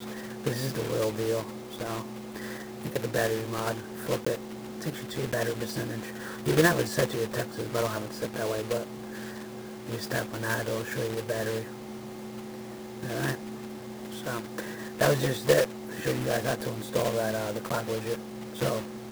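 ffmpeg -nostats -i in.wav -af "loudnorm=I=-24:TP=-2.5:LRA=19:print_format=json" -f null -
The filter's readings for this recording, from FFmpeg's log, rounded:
"input_i" : "-31.0",
"input_tp" : "-8.4",
"input_lra" : "4.7",
"input_thresh" : "-41.0",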